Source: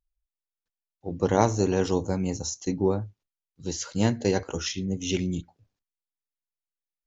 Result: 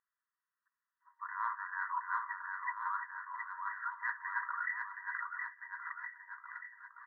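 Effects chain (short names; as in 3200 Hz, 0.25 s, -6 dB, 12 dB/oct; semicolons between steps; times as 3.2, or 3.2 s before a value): FFT band-pass 940–2000 Hz; reverse; compressor 10:1, threshold -49 dBFS, peak gain reduction 22.5 dB; reverse; bouncing-ball echo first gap 0.72 s, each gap 0.9×, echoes 5; gain +14.5 dB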